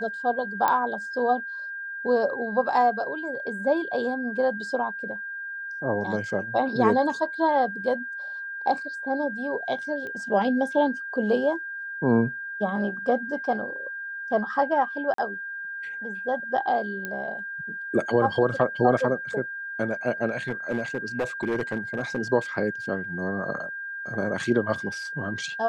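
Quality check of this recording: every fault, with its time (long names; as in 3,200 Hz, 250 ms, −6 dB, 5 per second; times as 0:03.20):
whistle 1,600 Hz −32 dBFS
0:00.68: click −10 dBFS
0:10.07: click −25 dBFS
0:15.14–0:15.18: drop-out 43 ms
0:17.05: click −17 dBFS
0:20.48–0:22.19: clipping −21.5 dBFS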